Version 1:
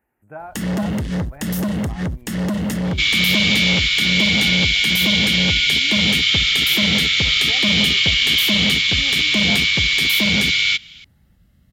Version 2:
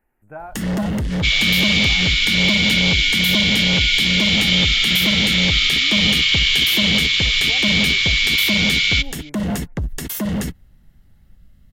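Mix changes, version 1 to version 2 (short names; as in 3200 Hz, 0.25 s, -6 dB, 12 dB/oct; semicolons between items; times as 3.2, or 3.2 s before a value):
second sound: entry -1.75 s; master: remove HPF 67 Hz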